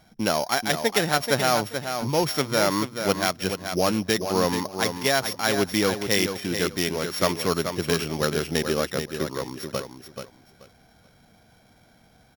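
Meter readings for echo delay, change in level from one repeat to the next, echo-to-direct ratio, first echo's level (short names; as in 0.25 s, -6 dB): 0.432 s, -14.0 dB, -7.5 dB, -7.5 dB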